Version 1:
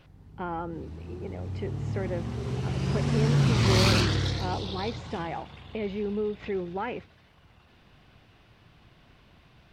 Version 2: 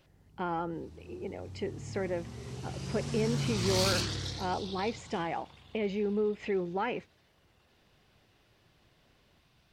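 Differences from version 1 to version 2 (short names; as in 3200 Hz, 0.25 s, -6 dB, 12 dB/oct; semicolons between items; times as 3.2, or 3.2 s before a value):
background -10.0 dB; master: add tone controls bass -1 dB, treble +11 dB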